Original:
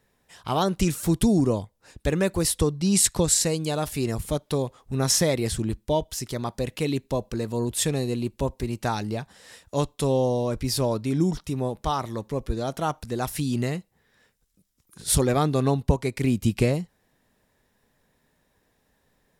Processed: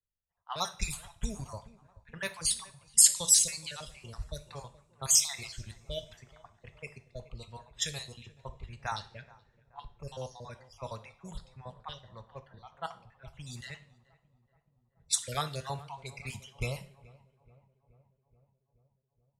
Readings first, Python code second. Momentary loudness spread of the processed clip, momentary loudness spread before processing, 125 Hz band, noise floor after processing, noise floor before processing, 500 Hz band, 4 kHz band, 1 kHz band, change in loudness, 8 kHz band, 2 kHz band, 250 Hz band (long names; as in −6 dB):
24 LU, 10 LU, −17.0 dB, −78 dBFS, −69 dBFS, −19.5 dB, −3.5 dB, −11.5 dB, −3.5 dB, −0.5 dB, −7.0 dB, −25.0 dB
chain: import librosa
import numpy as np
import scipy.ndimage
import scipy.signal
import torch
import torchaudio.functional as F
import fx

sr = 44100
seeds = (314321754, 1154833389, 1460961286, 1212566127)

y = fx.spec_dropout(x, sr, seeds[0], share_pct=49)
y = fx.env_lowpass(y, sr, base_hz=530.0, full_db=-21.0)
y = fx.tone_stack(y, sr, knobs='10-0-10')
y = fx.echo_filtered(y, sr, ms=427, feedback_pct=77, hz=1600.0, wet_db=-16.5)
y = fx.rev_double_slope(y, sr, seeds[1], early_s=0.49, late_s=4.4, knee_db=-28, drr_db=8.5)
y = fx.band_widen(y, sr, depth_pct=40)